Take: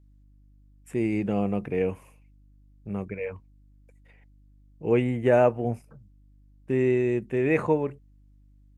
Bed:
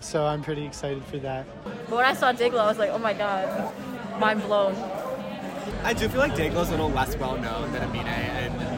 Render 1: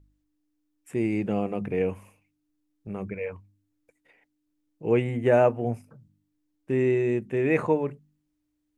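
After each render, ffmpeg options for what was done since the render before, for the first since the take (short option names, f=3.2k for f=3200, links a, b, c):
-af "bandreject=f=50:t=h:w=4,bandreject=f=100:t=h:w=4,bandreject=f=150:t=h:w=4,bandreject=f=200:t=h:w=4,bandreject=f=250:t=h:w=4"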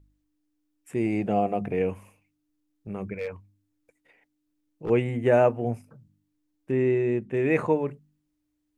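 -filter_complex "[0:a]asettb=1/sr,asplit=3[a][b][c];[a]atrim=end=1.064[d];[b]atrim=start=1.06:end=1.73,asetpts=PTS-STARTPTS,afade=t=in:d=0.004:c=qsin,afade=t=out:st=0.666:d=0.004:c=qsin,equalizer=f=690:w=4.2:g=11.5[e];[c]atrim=start=1.726[f];[d][e]acrossfade=d=0.004:c1=hsin:c2=qsin[g];[g][f]acrossfade=d=0.004:c1=qsin:c2=hsin,asettb=1/sr,asplit=3[h][i][j];[h]atrim=end=3.164[k];[i]atrim=start=3.16:end=4.9,asetpts=PTS-STARTPTS,afade=t=in:d=0.004:c=qsin,afade=t=out:st=1.736:d=0.004:c=qsin,asoftclip=type=hard:threshold=-26dB[l];[j]atrim=start=4.896[m];[k][l]acrossfade=d=0.004:c1=hsin:c2=qsin[n];[n][m]acrossfade=d=0.004:c1=qsin:c2=hsin,asettb=1/sr,asplit=3[o][p][q];[o]atrim=end=6.714[r];[p]atrim=start=6.71:end=7.34,asetpts=PTS-STARTPTS,afade=t=in:d=0.004:c=qsin,afade=t=out:st=0.626:d=0.004:c=qsin,lowpass=f=3k:p=1[s];[q]atrim=start=7.336[t];[r][s]acrossfade=d=0.004:c1=hsin:c2=qsin[u];[u][t]acrossfade=d=0.004:c1=qsin:c2=hsin"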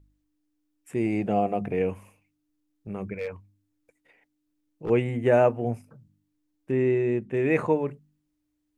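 -af anull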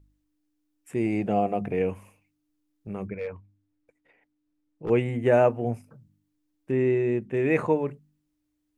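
-filter_complex "[0:a]asettb=1/sr,asplit=3[a][b][c];[a]atrim=end=3.074[d];[b]atrim=start=3.07:end=4.87,asetpts=PTS-STARTPTS,afade=t=in:d=0.004:c=qsin,afade=t=out:st=1.796:d=0.004:c=qsin,lowpass=f=2.2k:p=1[e];[c]atrim=start=4.866[f];[d][e]acrossfade=d=0.004:c1=hsin:c2=qsin[g];[g][f]acrossfade=d=0.004:c1=qsin:c2=hsin"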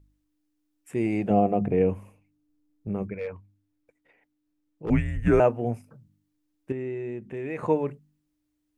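-filter_complex "[0:a]asettb=1/sr,asplit=3[a][b][c];[a]atrim=end=1.304[d];[b]atrim=start=1.3:end=3.03,asetpts=PTS-STARTPTS,afade=t=in:d=0.004:c=qsin,afade=t=out:st=1.726:d=0.004:c=qsin,tiltshelf=f=910:g=6[e];[c]atrim=start=3.026[f];[d][e]acrossfade=d=0.004:c1=hsin:c2=qsin[g];[g][f]acrossfade=d=0.004:c1=qsin:c2=hsin,asettb=1/sr,asplit=3[h][i][j];[h]atrim=end=4.904[k];[i]atrim=start=4.9:end=5.4,asetpts=PTS-STARTPTS,afade=t=in:d=0.004:c=qsin,afade=t=out:st=0.496:d=0.004:c=qsin,afreqshift=-210[l];[j]atrim=start=5.396[m];[k][l]acrossfade=d=0.004:c1=hsin:c2=qsin[n];[n][m]acrossfade=d=0.004:c1=qsin:c2=hsin,asettb=1/sr,asplit=3[o][p][q];[o]atrim=end=6.724[r];[p]atrim=start=6.72:end=7.63,asetpts=PTS-STARTPTS,afade=t=in:d=0.004:c=qsin,afade=t=out:st=0.906:d=0.004:c=qsin,acompressor=threshold=-37dB:ratio=2:attack=3.2:release=140:knee=1:detection=peak[s];[q]atrim=start=7.626[t];[r][s]acrossfade=d=0.004:c1=hsin:c2=qsin[u];[u][t]acrossfade=d=0.004:c1=qsin:c2=hsin"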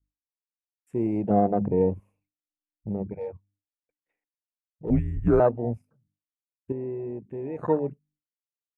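-af "agate=range=-33dB:threshold=-58dB:ratio=3:detection=peak,afwtdn=0.0398"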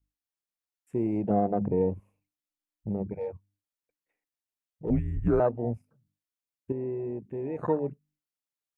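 -af "acompressor=threshold=-27dB:ratio=1.5"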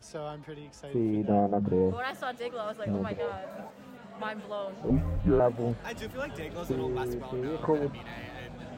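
-filter_complex "[1:a]volume=-13.5dB[a];[0:a][a]amix=inputs=2:normalize=0"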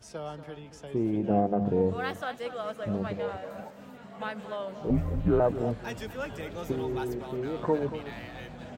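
-filter_complex "[0:a]asplit=2[a][b];[b]adelay=233.2,volume=-12dB,highshelf=f=4k:g=-5.25[c];[a][c]amix=inputs=2:normalize=0"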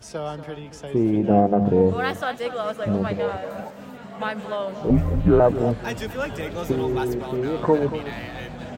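-af "volume=8dB"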